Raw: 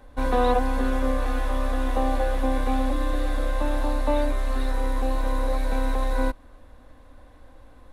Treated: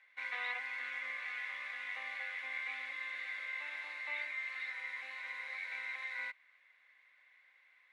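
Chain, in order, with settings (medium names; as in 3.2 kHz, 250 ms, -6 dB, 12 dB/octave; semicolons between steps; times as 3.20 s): ladder band-pass 2.2 kHz, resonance 85%; trim +3.5 dB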